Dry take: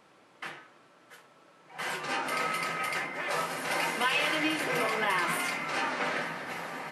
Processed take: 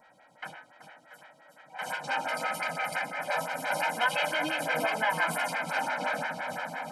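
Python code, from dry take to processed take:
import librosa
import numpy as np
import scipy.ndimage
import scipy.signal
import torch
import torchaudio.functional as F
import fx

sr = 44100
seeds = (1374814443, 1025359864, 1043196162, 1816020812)

p1 = x + 0.96 * np.pad(x, (int(1.3 * sr / 1000.0), 0))[:len(x)]
p2 = p1 + 10.0 ** (-63.0 / 20.0) * np.sin(2.0 * np.pi * 1900.0 * np.arange(len(p1)) / sr)
p3 = p2 + fx.echo_feedback(p2, sr, ms=380, feedback_pct=49, wet_db=-8.0, dry=0)
y = fx.stagger_phaser(p3, sr, hz=5.8)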